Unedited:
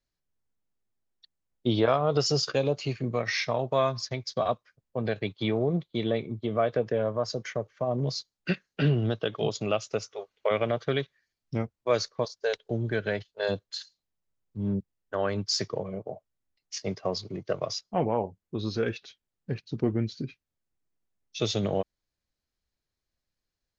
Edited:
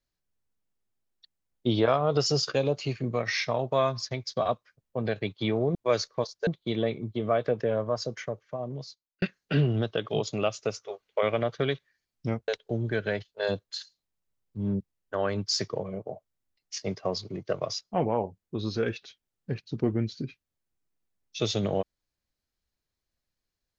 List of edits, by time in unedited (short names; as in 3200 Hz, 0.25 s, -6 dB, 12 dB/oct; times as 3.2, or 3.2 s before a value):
7.28–8.5 fade out
11.76–12.48 move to 5.75